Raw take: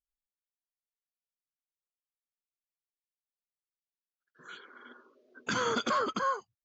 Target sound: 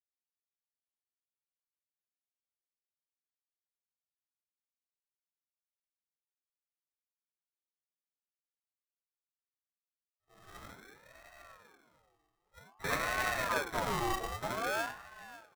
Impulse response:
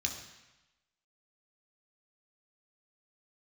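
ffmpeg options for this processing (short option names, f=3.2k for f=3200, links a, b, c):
-filter_complex "[0:a]agate=range=-33dB:threshold=-56dB:ratio=3:detection=peak,highpass=f=1.2k:p=1,aecho=1:1:3.8:0.65,asetrate=18846,aresample=44100,aecho=1:1:545|1090:0.141|0.0367[a];[1:a]atrim=start_sample=2205,atrim=end_sample=4410[b];[a][b]afir=irnorm=-1:irlink=0,acrusher=samples=23:mix=1:aa=0.000001,aeval=exprs='val(0)*sin(2*PI*930*n/s+930*0.4/0.53*sin(2*PI*0.53*n/s))':c=same,volume=1dB"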